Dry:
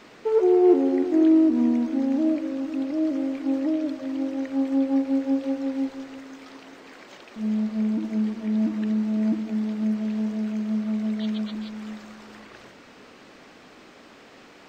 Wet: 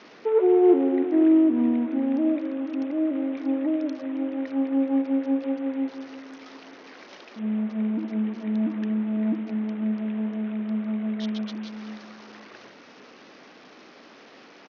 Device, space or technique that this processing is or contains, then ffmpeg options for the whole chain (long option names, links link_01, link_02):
Bluetooth headset: -af "highpass=180,aresample=16000,aresample=44100" -ar 48000 -c:a sbc -b:a 64k